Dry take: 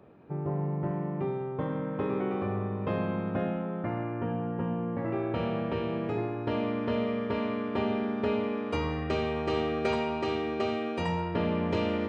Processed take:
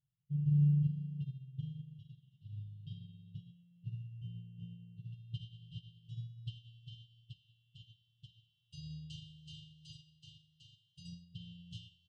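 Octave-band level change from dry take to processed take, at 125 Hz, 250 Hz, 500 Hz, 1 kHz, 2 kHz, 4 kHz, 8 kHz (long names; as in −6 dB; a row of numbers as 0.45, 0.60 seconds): −2.5 dB, −14.0 dB, below −40 dB, below −40 dB, below −30 dB, −11.5 dB, can't be measured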